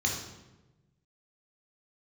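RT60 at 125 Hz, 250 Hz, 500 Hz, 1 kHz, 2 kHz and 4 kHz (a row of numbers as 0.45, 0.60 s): 1.7, 1.4, 1.2, 0.95, 0.90, 0.75 s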